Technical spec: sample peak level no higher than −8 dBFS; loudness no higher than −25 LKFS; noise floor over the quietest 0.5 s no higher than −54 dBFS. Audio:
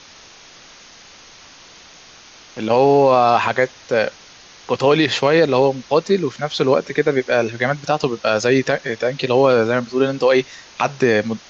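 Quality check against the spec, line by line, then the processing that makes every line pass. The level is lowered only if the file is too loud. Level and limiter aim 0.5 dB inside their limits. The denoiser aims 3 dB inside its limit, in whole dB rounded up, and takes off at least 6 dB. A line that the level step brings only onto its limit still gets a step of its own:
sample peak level −4.0 dBFS: out of spec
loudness −17.5 LKFS: out of spec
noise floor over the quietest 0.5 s −44 dBFS: out of spec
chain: broadband denoise 6 dB, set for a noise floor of −44 dBFS
level −8 dB

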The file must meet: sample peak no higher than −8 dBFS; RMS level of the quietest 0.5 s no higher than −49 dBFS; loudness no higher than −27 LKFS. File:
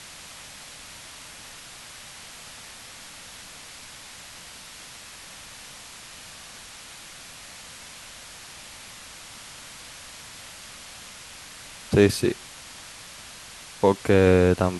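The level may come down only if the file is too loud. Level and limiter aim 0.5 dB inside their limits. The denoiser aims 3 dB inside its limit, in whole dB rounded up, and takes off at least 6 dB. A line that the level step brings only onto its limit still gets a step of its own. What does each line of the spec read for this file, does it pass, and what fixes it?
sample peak −4.0 dBFS: out of spec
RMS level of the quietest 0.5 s −44 dBFS: out of spec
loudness −21.0 LKFS: out of spec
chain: level −6.5 dB

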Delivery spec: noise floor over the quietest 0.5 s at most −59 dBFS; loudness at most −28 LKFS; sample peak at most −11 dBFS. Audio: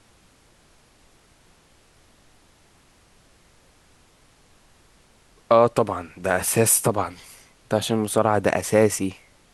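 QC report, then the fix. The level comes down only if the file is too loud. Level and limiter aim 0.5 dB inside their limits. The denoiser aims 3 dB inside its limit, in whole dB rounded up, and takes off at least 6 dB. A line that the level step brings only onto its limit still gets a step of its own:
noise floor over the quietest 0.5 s −57 dBFS: out of spec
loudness −21.0 LKFS: out of spec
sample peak −4.0 dBFS: out of spec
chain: level −7.5 dB

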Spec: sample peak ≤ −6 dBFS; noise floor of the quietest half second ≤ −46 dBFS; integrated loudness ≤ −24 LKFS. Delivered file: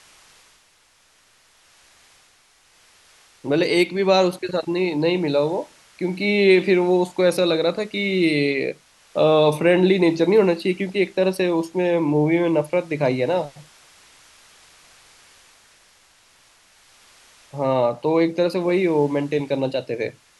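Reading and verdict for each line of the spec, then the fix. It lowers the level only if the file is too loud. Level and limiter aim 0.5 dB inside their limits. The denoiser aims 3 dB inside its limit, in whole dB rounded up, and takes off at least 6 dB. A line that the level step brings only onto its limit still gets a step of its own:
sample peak −3.5 dBFS: out of spec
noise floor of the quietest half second −58 dBFS: in spec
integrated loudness −20.0 LKFS: out of spec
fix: level −4.5 dB

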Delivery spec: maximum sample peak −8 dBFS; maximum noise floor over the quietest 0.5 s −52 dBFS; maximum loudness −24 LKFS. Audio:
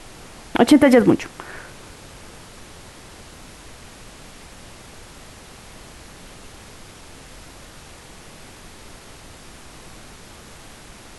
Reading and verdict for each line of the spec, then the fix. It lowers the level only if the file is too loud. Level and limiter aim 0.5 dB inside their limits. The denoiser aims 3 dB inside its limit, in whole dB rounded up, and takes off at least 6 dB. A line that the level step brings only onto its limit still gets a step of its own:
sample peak −2.5 dBFS: out of spec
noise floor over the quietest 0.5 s −42 dBFS: out of spec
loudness −16.0 LKFS: out of spec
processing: broadband denoise 6 dB, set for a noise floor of −42 dBFS
level −8.5 dB

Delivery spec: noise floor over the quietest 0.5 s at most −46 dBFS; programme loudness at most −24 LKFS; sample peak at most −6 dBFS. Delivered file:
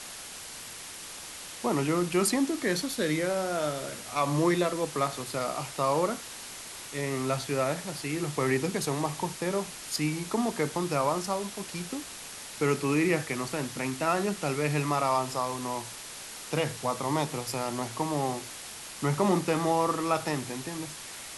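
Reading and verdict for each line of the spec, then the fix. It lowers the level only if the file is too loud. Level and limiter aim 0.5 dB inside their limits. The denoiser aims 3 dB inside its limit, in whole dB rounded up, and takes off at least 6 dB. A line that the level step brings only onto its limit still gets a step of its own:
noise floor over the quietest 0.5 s −43 dBFS: out of spec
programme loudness −30.0 LKFS: in spec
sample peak −12.5 dBFS: in spec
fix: broadband denoise 6 dB, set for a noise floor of −43 dBFS

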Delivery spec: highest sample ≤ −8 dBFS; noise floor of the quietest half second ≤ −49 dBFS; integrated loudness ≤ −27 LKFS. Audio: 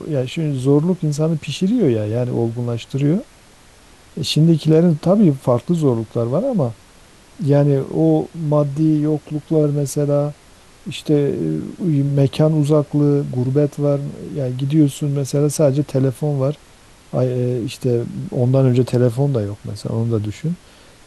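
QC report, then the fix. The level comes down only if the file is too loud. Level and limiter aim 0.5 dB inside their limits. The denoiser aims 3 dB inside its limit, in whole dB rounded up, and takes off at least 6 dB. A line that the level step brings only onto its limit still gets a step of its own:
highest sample −3.0 dBFS: out of spec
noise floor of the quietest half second −47 dBFS: out of spec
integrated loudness −18.5 LKFS: out of spec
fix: level −9 dB

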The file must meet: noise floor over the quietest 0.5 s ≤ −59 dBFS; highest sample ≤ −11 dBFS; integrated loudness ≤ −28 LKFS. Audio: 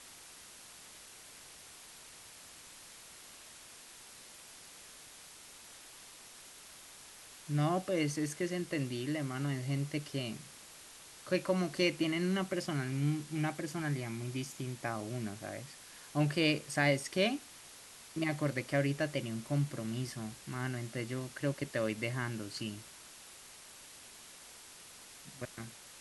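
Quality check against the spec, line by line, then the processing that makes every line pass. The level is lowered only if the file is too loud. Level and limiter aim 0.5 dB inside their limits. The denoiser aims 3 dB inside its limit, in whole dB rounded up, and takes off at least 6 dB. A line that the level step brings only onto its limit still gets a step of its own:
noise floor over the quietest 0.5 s −54 dBFS: out of spec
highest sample −15.5 dBFS: in spec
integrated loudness −35.5 LKFS: in spec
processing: broadband denoise 8 dB, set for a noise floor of −54 dBFS

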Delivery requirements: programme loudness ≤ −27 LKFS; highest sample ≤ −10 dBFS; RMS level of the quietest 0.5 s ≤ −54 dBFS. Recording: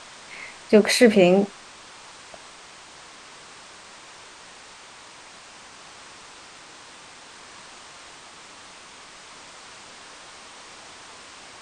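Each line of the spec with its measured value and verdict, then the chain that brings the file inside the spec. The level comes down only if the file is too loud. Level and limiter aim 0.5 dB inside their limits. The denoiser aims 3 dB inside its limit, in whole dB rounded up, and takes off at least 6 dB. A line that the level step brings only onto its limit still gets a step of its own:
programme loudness −18.0 LKFS: out of spec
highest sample −2.0 dBFS: out of spec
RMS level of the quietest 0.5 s −46 dBFS: out of spec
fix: level −9.5 dB

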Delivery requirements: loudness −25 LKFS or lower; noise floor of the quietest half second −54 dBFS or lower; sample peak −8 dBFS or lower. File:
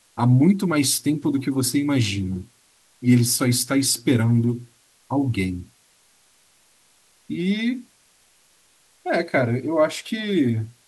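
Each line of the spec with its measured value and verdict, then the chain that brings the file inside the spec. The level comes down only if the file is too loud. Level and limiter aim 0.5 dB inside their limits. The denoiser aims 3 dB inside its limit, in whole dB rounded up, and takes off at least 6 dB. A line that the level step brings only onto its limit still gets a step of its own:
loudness −21.5 LKFS: out of spec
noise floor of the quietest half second −59 dBFS: in spec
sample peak −6.0 dBFS: out of spec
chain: level −4 dB

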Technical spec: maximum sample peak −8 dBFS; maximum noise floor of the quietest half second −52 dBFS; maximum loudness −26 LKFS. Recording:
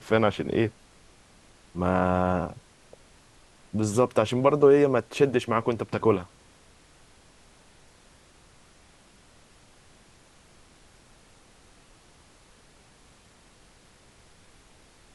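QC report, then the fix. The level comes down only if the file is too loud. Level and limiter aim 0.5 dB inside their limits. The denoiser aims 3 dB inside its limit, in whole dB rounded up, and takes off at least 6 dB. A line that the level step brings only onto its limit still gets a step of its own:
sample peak −7.0 dBFS: out of spec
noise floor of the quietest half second −56 dBFS: in spec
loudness −24.5 LKFS: out of spec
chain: level −2 dB

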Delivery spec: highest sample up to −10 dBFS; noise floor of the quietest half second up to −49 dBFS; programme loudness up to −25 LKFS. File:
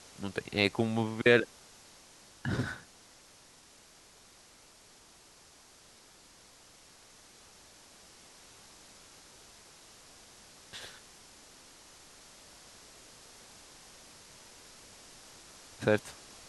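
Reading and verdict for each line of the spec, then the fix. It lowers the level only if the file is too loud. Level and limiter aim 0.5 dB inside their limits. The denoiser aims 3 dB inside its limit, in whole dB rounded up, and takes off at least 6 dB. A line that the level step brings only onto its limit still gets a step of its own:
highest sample −9.0 dBFS: out of spec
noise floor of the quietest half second −58 dBFS: in spec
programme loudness −31.5 LKFS: in spec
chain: brickwall limiter −10.5 dBFS

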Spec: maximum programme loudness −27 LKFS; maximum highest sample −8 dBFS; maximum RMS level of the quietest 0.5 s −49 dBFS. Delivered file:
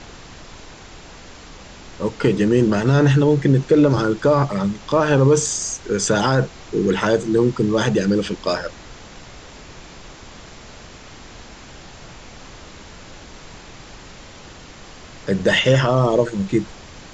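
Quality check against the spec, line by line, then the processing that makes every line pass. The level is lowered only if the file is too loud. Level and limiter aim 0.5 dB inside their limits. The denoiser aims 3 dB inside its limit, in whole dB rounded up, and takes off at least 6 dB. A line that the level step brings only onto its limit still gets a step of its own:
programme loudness −18.0 LKFS: out of spec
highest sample −5.0 dBFS: out of spec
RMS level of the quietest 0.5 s −40 dBFS: out of spec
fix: level −9.5 dB

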